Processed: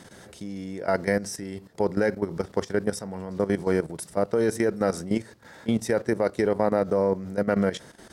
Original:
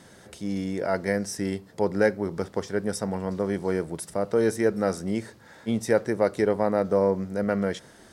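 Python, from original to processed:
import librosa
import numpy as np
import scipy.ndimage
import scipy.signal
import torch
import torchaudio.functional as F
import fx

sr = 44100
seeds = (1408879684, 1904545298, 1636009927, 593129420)

y = fx.level_steps(x, sr, step_db=13)
y = y * librosa.db_to_amplitude(4.5)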